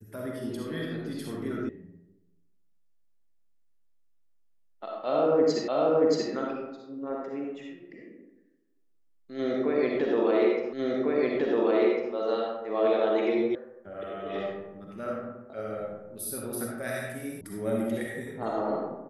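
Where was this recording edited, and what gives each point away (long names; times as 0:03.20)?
0:01.69: cut off before it has died away
0:05.68: the same again, the last 0.63 s
0:10.73: the same again, the last 1.4 s
0:13.55: cut off before it has died away
0:17.41: cut off before it has died away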